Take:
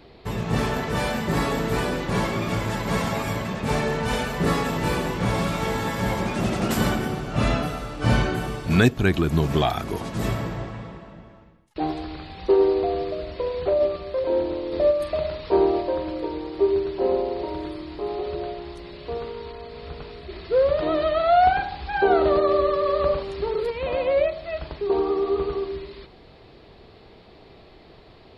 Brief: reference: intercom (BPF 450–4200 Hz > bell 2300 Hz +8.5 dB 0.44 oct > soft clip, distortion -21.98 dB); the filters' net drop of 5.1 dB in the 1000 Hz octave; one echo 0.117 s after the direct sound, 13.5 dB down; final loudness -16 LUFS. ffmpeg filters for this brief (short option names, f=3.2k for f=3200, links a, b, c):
-af "highpass=450,lowpass=4.2k,equalizer=f=1k:t=o:g=-7.5,equalizer=f=2.3k:t=o:w=0.44:g=8.5,aecho=1:1:117:0.211,asoftclip=threshold=-15dB,volume=12.5dB"